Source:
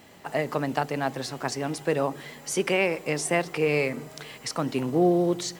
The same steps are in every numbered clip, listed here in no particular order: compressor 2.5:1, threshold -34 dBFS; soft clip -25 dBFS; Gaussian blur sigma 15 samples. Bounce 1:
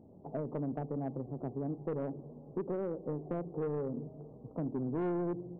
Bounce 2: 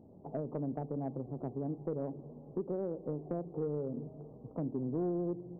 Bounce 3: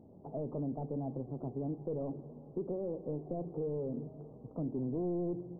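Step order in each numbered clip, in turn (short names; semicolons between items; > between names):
Gaussian blur > soft clip > compressor; Gaussian blur > compressor > soft clip; soft clip > Gaussian blur > compressor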